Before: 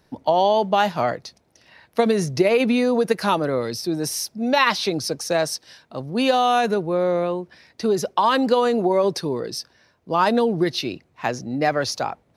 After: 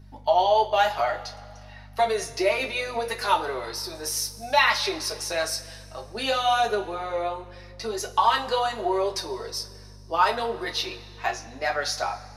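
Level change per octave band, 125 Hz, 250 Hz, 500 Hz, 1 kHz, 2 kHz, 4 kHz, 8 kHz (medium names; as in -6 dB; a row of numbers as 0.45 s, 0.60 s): -11.5 dB, -15.5 dB, -6.5 dB, -2.0 dB, -0.5 dB, -0.5 dB, -1.0 dB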